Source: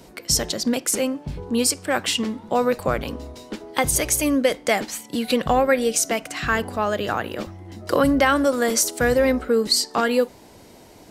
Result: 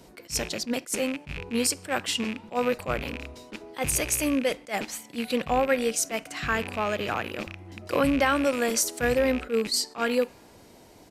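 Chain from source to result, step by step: rattle on loud lows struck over -34 dBFS, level -18 dBFS; on a send at -22 dB: high-pass 810 Hz 24 dB/octave + reverberation RT60 1.9 s, pre-delay 4 ms; on the sum: resampled via 32 kHz; attacks held to a fixed rise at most 290 dB/s; trim -5 dB

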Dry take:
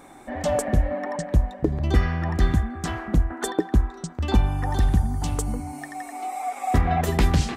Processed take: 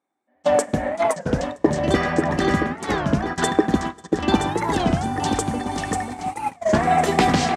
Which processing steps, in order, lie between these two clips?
bouncing-ball echo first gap 540 ms, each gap 0.8×, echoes 5; gate -24 dBFS, range -39 dB; band-pass 210–7900 Hz; on a send at -20 dB: reverberation RT60 1.3 s, pre-delay 7 ms; on the sum: warped record 33 1/3 rpm, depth 250 cents; trim +6.5 dB

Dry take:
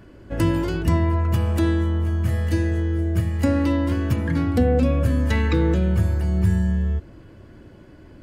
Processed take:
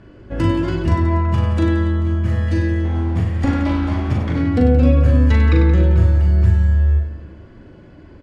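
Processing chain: 2.84–4.36 s: comb filter that takes the minimum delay 0.89 ms; distance through air 92 m; reverse bouncing-ball echo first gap 40 ms, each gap 1.4×, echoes 5; trim +1.5 dB

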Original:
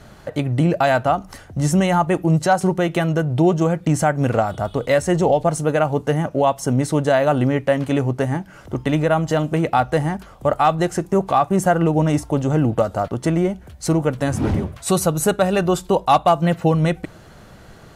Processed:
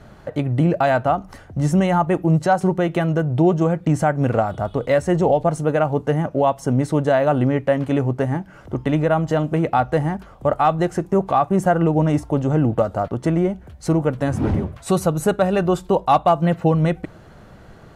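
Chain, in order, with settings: treble shelf 2.9 kHz -9.5 dB

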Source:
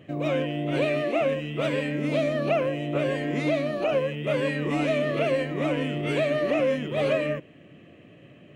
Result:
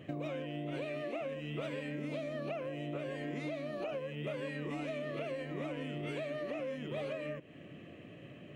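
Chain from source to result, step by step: compression 12:1, threshold -35 dBFS, peak gain reduction 16 dB; trim -1 dB

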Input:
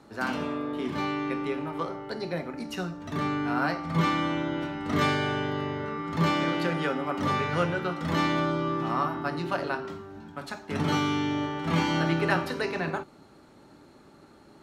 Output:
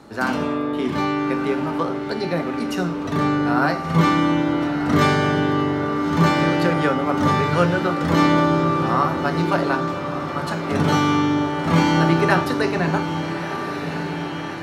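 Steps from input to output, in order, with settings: echo that smears into a reverb 1266 ms, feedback 64%, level -9 dB; dynamic bell 2.8 kHz, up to -4 dB, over -42 dBFS, Q 1.1; trim +8.5 dB

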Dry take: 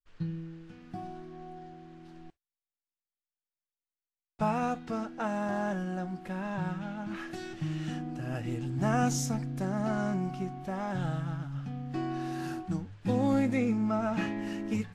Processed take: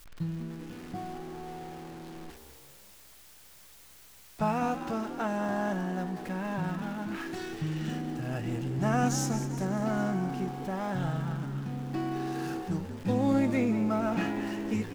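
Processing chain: jump at every zero crossing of -43.5 dBFS; frequency-shifting echo 194 ms, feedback 51%, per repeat +66 Hz, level -11.5 dB

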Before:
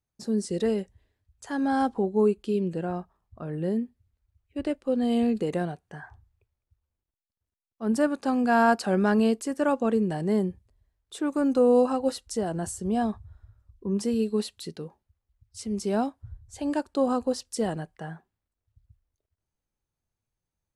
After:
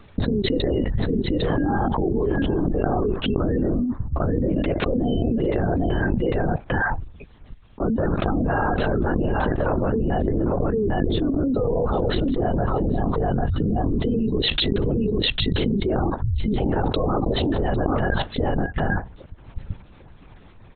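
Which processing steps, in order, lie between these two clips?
spectral gate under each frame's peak -30 dB strong; 10.25–11.56 s: graphic EQ 125/250/500/1000/2000 Hz -11/+10/+4/-7/-5 dB; peak limiter -20.5 dBFS, peak gain reduction 10 dB; on a send: delay 799 ms -11.5 dB; on the sum: LPC vocoder at 8 kHz whisper; level flattener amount 100%

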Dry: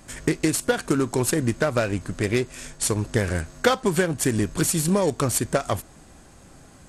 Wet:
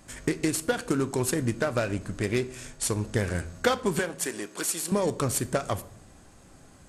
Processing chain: 3.99–4.92 s: high-pass 460 Hz 12 dB/octave; on a send: reverberation RT60 0.65 s, pre-delay 10 ms, DRR 14 dB; on the sum: trim -4.5 dB

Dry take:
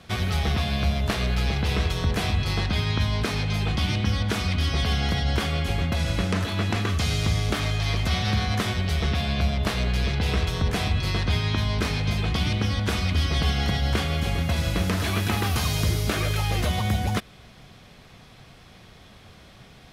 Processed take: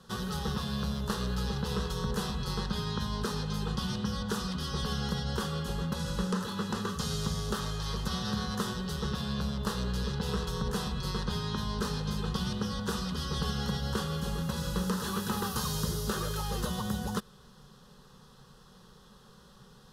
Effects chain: static phaser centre 450 Hz, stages 8; trim -3 dB

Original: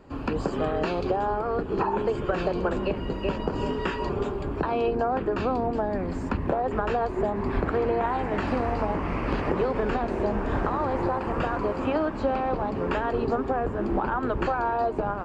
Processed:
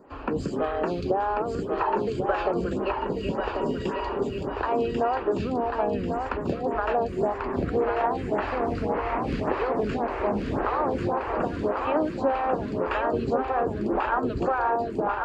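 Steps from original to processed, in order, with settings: high-pass 42 Hz; on a send: thinning echo 1091 ms, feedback 44%, level -4 dB; on the sum: lamp-driven phase shifter 1.8 Hz; trim +2 dB

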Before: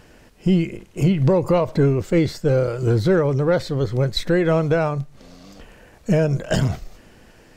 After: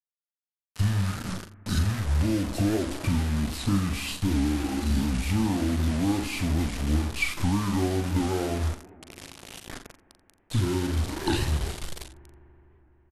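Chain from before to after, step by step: treble shelf 6.1 kHz +10.5 dB; de-hum 119.8 Hz, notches 27; compression 12:1, threshold -23 dBFS, peak gain reduction 11 dB; bit crusher 6-bit; early reflections 23 ms -8 dB, 49 ms -16 dB; reverberation RT60 2.5 s, pre-delay 47 ms, DRR 19 dB; speed mistake 78 rpm record played at 45 rpm; warped record 78 rpm, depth 160 cents

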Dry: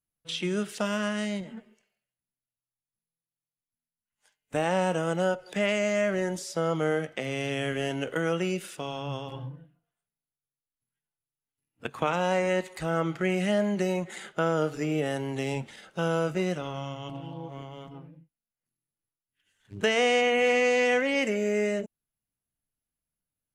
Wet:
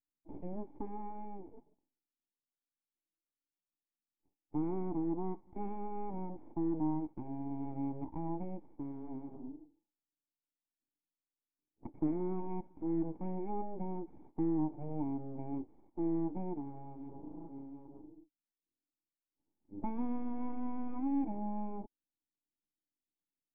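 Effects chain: full-wave rectifier; cascade formant filter u; trim +4 dB

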